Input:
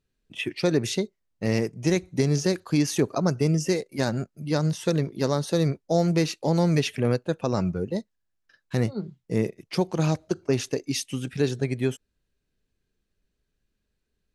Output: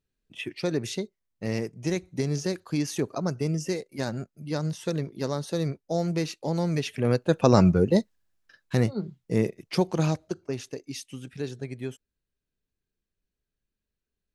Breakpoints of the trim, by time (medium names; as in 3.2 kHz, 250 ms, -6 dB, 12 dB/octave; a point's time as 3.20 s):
6.86 s -5 dB
7.47 s +7.5 dB
7.98 s +7.5 dB
8.89 s +0.5 dB
9.94 s +0.5 dB
10.57 s -9 dB